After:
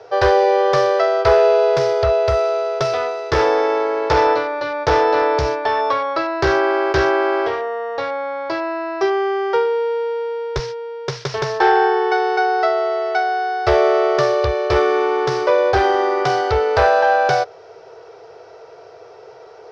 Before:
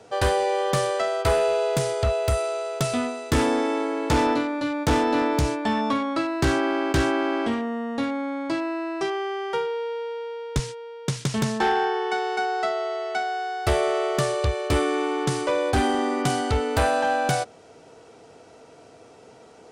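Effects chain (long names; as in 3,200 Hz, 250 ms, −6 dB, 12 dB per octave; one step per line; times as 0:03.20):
drawn EQ curve 110 Hz 0 dB, 160 Hz −4 dB, 230 Hz −27 dB, 380 Hz +10 dB, 790 Hz +8 dB, 1,600 Hz +8 dB, 3,000 Hz +1 dB, 5,500 Hz +6 dB, 7,900 Hz −20 dB, 12,000 Hz −24 dB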